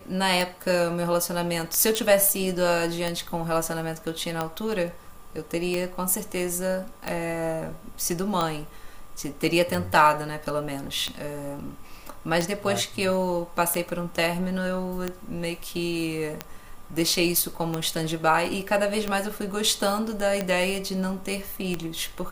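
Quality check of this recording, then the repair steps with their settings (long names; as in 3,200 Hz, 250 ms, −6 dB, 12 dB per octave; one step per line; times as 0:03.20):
scratch tick 45 rpm
0:01.95: click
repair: click removal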